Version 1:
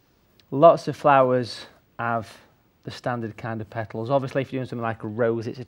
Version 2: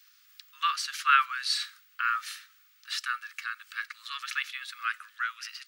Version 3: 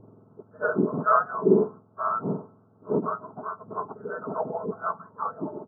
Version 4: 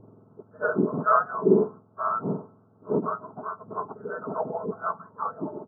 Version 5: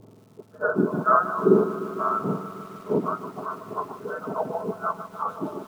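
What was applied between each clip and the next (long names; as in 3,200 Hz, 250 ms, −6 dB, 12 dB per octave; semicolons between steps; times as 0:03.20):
Butterworth high-pass 1,200 Hz 96 dB per octave; high-shelf EQ 2,100 Hz +9.5 dB
frequency axis turned over on the octave scale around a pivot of 1,300 Hz; comb filter 4.6 ms, depth 52%; two-band tremolo in antiphase 1.3 Hz, depth 50%, crossover 1,200 Hz; level +5.5 dB
no processing that can be heard
surface crackle 290 per second −52 dBFS; feedback echo at a low word length 150 ms, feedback 80%, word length 8 bits, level −13.5 dB; level +1.5 dB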